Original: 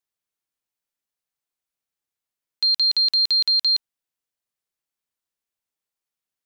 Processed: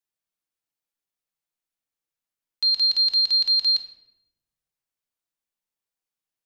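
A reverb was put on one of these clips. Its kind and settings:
rectangular room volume 310 cubic metres, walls mixed, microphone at 0.63 metres
level −3.5 dB

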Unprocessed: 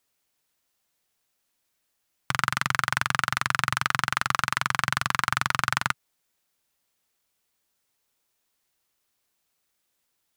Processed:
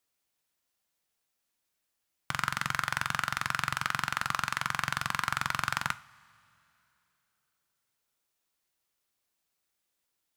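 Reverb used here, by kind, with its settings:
coupled-rooms reverb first 0.32 s, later 3 s, from −20 dB, DRR 12 dB
level −6 dB

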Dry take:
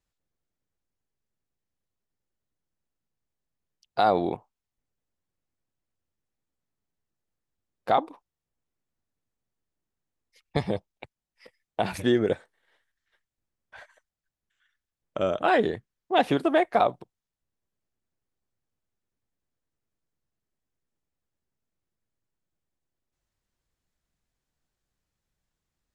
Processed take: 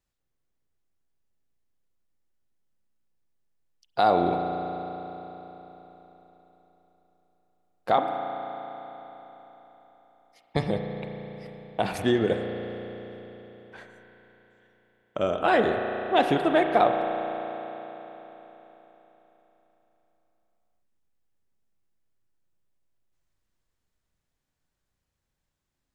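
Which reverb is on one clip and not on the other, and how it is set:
spring reverb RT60 4 s, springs 34 ms, chirp 35 ms, DRR 4 dB

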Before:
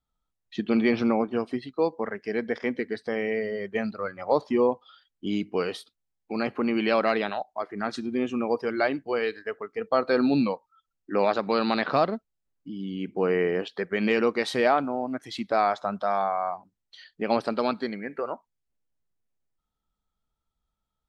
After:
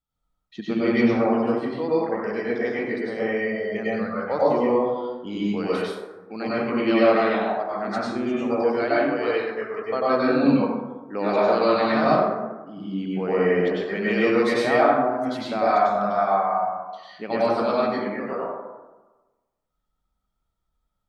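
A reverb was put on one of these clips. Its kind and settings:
dense smooth reverb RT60 1.2 s, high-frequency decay 0.4×, pre-delay 85 ms, DRR −8 dB
level −5 dB

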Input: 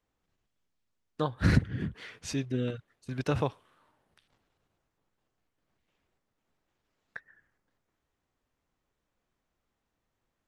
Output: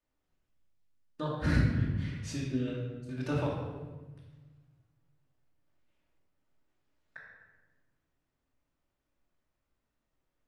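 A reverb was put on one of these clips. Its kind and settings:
rectangular room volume 790 cubic metres, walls mixed, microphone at 2.6 metres
level −8.5 dB

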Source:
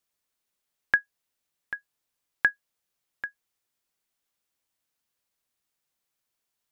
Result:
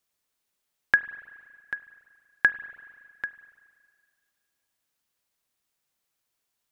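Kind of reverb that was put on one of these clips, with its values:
spring reverb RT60 1.9 s, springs 35/47 ms, chirp 65 ms, DRR 14 dB
level +2 dB

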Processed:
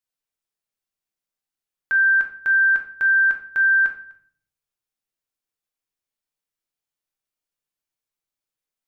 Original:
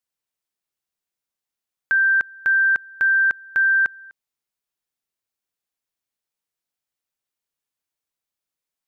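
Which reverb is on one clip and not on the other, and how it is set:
rectangular room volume 62 cubic metres, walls mixed, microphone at 0.5 metres
level −4 dB

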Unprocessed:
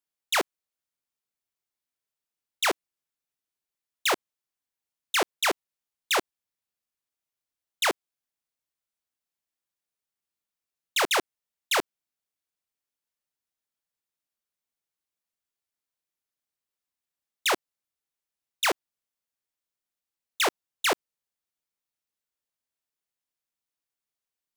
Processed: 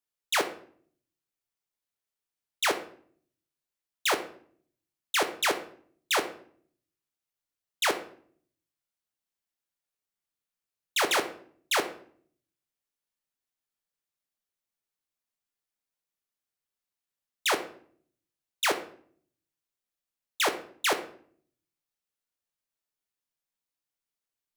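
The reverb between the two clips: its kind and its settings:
rectangular room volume 71 cubic metres, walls mixed, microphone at 0.35 metres
level −2 dB

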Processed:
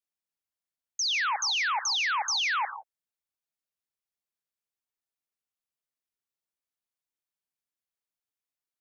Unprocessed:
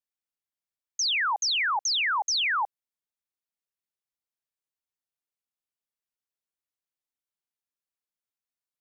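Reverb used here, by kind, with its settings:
reverb whose tail is shaped and stops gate 190 ms rising, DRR 10.5 dB
level −2 dB

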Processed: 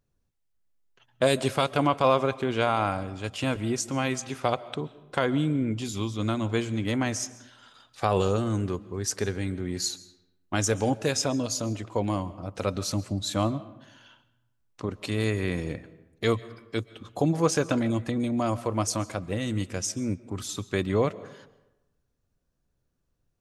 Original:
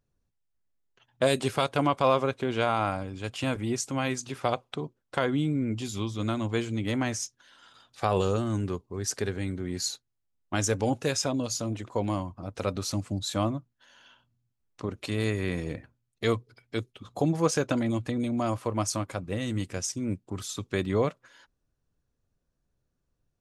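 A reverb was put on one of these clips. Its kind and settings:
comb and all-pass reverb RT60 1 s, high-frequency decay 0.6×, pre-delay 95 ms, DRR 17.5 dB
level +1.5 dB

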